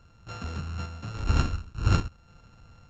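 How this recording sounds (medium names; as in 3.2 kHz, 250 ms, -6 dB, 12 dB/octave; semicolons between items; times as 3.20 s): a buzz of ramps at a fixed pitch in blocks of 32 samples; random-step tremolo; µ-law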